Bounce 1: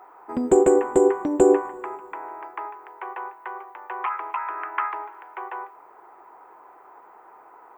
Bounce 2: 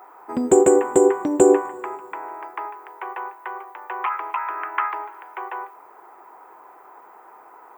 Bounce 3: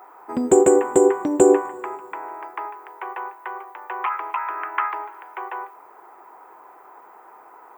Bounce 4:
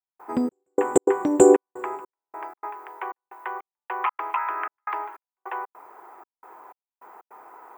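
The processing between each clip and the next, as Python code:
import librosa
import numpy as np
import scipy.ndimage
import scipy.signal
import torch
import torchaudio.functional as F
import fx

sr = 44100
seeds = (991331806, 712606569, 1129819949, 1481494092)

y1 = scipy.signal.sosfilt(scipy.signal.butter(2, 69.0, 'highpass', fs=sr, output='sos'), x)
y1 = fx.high_shelf(y1, sr, hz=4700.0, db=8.5)
y1 = F.gain(torch.from_numpy(y1), 2.0).numpy()
y2 = y1
y3 = fx.step_gate(y2, sr, bpm=154, pattern='..xxx...xx.xxxxx', floor_db=-60.0, edge_ms=4.5)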